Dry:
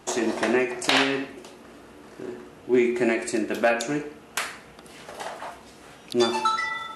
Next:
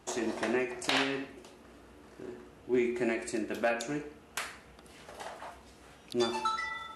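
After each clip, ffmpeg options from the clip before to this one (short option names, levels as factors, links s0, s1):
-af "equalizer=f=67:w=1.5:g=10,volume=0.376"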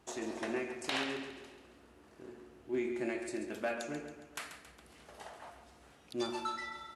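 -af "aecho=1:1:137|274|411|548|685|822:0.316|0.161|0.0823|0.0419|0.0214|0.0109,volume=0.473"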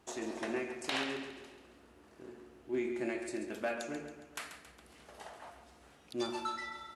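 -af "bandreject=f=50:t=h:w=6,bandreject=f=100:t=h:w=6,bandreject=f=150:t=h:w=6"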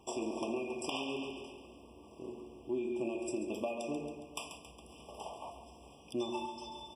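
-af "acompressor=threshold=0.0126:ratio=6,afftfilt=real='re*eq(mod(floor(b*sr/1024/1200),2),0)':imag='im*eq(mod(floor(b*sr/1024/1200),2),0)':win_size=1024:overlap=0.75,volume=1.88"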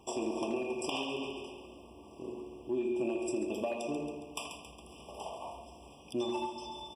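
-filter_complex "[0:a]asplit=2[s0][s1];[s1]asoftclip=type=tanh:threshold=0.0299,volume=0.282[s2];[s0][s2]amix=inputs=2:normalize=0,asplit=2[s3][s4];[s4]adelay=80,highpass=300,lowpass=3400,asoftclip=type=hard:threshold=0.0335,volume=0.447[s5];[s3][s5]amix=inputs=2:normalize=0"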